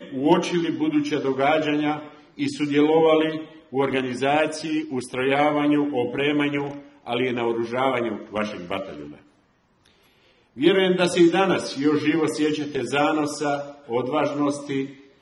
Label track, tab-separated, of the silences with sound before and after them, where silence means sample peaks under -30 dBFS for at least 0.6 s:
9.070000	10.580000	silence